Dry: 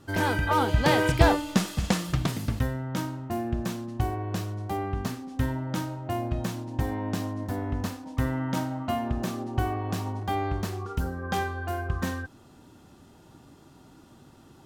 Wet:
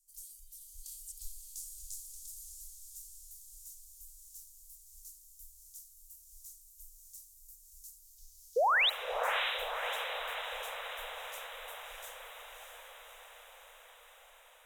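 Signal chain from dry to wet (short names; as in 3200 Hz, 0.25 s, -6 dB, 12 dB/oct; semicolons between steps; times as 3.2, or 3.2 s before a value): 8–8.72 delta modulation 32 kbps, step -34.5 dBFS; inverse Chebyshev band-stop 120–1400 Hz, stop band 80 dB; bell 3800 Hz -3 dB 1.7 oct; 8.56–8.9 painted sound rise 440–4100 Hz -24 dBFS; diffused feedback echo 0.61 s, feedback 68%, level -5 dB; reverb RT60 3.9 s, pre-delay 42 ms, DRR 12 dB; gain -2.5 dB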